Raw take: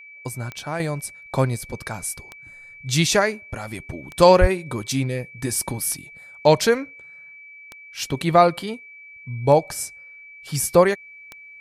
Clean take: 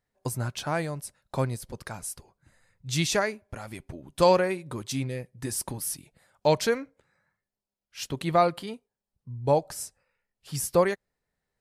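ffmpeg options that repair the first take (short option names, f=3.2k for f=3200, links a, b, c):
-filter_complex "[0:a]adeclick=t=4,bandreject=f=2.3k:w=30,asplit=3[a][b][c];[a]afade=t=out:st=4.4:d=0.02[d];[b]highpass=f=140:w=0.5412,highpass=f=140:w=1.3066,afade=t=in:st=4.4:d=0.02,afade=t=out:st=4.52:d=0.02[e];[c]afade=t=in:st=4.52:d=0.02[f];[d][e][f]amix=inputs=3:normalize=0,asetnsamples=n=441:p=0,asendcmd='0.8 volume volume -7dB',volume=0dB"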